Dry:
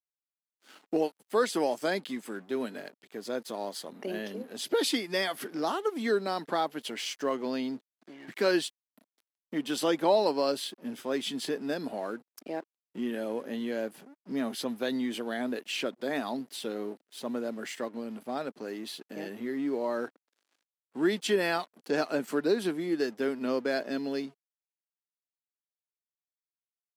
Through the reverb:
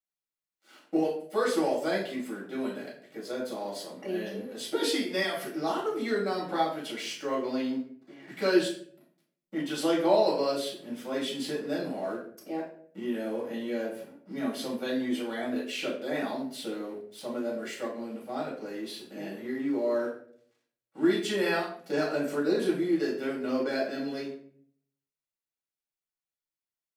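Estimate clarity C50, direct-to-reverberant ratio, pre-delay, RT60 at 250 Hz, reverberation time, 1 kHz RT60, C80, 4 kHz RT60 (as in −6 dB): 5.5 dB, −5.5 dB, 4 ms, 0.75 s, 0.55 s, 0.45 s, 10.0 dB, 0.35 s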